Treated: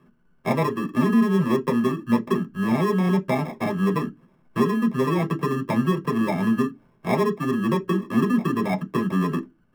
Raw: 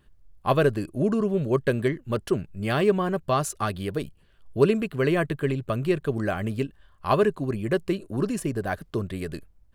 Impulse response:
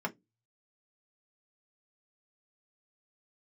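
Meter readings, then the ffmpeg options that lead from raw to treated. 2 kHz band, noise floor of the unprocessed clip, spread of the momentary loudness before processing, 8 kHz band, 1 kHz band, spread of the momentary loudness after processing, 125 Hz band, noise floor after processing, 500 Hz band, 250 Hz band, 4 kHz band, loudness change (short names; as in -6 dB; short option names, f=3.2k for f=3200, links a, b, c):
+1.0 dB, -58 dBFS, 10 LU, n/a, +3.0 dB, 6 LU, +2.0 dB, -61 dBFS, -1.5 dB, +6.5 dB, 0.0 dB, +2.5 dB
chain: -filter_complex "[0:a]equalizer=f=100:t=o:w=0.67:g=-7,equalizer=f=250:t=o:w=0.67:g=6,equalizer=f=1k:t=o:w=0.67:g=-9,equalizer=f=2.5k:t=o:w=0.67:g=-10,equalizer=f=6.3k:t=o:w=0.67:g=-11,acrusher=samples=30:mix=1:aa=0.000001,acompressor=threshold=-29dB:ratio=6[a];[1:a]atrim=start_sample=2205[b];[a][b]afir=irnorm=-1:irlink=0,volume=3.5dB"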